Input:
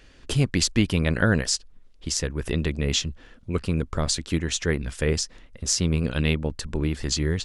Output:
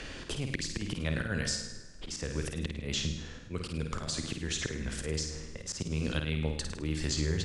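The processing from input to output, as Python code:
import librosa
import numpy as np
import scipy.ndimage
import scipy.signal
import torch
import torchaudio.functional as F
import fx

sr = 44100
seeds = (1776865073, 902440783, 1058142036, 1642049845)

y = scipy.signal.sosfilt(scipy.signal.butter(4, 10000.0, 'lowpass', fs=sr, output='sos'), x)
y = fx.rev_plate(y, sr, seeds[0], rt60_s=0.93, hf_ratio=0.95, predelay_ms=0, drr_db=13.0)
y = fx.auto_swell(y, sr, attack_ms=266.0)
y = fx.room_flutter(y, sr, wall_m=8.9, rt60_s=0.51)
y = fx.band_squash(y, sr, depth_pct=70)
y = F.gain(torch.from_numpy(y), -5.0).numpy()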